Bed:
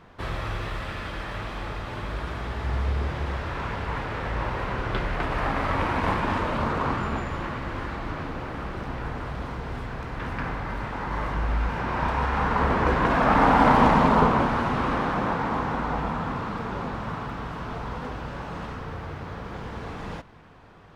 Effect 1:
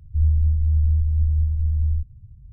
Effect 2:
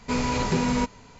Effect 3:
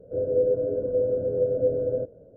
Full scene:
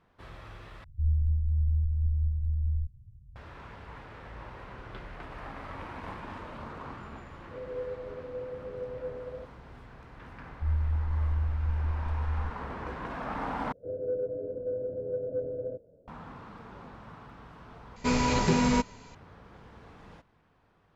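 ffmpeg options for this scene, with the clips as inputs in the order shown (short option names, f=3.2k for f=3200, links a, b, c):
-filter_complex "[1:a]asplit=2[a][b];[3:a]asplit=2[c][d];[0:a]volume=-16dB[e];[c]acrossover=split=290[f][g];[g]adelay=70[h];[f][h]amix=inputs=2:normalize=0[i];[d]acontrast=63[j];[e]asplit=4[k][l][m][n];[k]atrim=end=0.844[o];[a]atrim=end=2.52,asetpts=PTS-STARTPTS,volume=-8dB[p];[l]atrim=start=3.356:end=13.724[q];[j]atrim=end=2.36,asetpts=PTS-STARTPTS,volume=-15.5dB[r];[m]atrim=start=16.076:end=17.964[s];[2:a]atrim=end=1.19,asetpts=PTS-STARTPTS,volume=-0.5dB[t];[n]atrim=start=19.146[u];[i]atrim=end=2.36,asetpts=PTS-STARTPTS,volume=-14dB,afade=t=in:d=0.004:c=hsin,afade=t=out:st=2.356:d=0.004:c=hsin,adelay=7330[v];[b]atrim=end=2.52,asetpts=PTS-STARTPTS,volume=-10dB,afade=t=in:d=0.004:c=hsin,afade=t=out:st=2.516:d=0.004:c=hsin,adelay=10470[w];[o][p]acrossfade=d=0.004:c1=hsin:c2=hsin[x];[x][q]acrossfade=d=0.004:c1=hsin:c2=hsin[y];[y][r]acrossfade=d=0.004:c1=hsin:c2=hsin[z];[z][s]acrossfade=d=0.004:c1=hsin:c2=hsin[aa];[aa][t]acrossfade=d=0.004:c1=hsin:c2=hsin[ab];[ab][u]acrossfade=d=0.004:c1=hsin:c2=hsin[ac];[ac][v][w]amix=inputs=3:normalize=0"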